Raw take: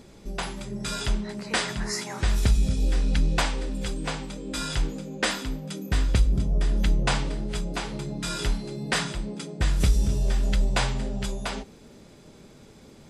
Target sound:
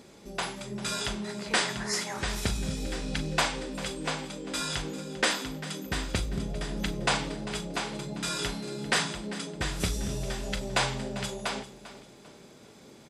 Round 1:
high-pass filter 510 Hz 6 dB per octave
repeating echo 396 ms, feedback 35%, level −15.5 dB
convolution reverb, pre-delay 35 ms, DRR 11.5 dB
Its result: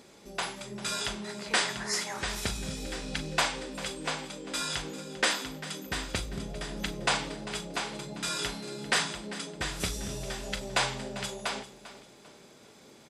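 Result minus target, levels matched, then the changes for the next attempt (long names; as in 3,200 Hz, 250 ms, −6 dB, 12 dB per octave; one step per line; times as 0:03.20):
250 Hz band −3.0 dB
change: high-pass filter 250 Hz 6 dB per octave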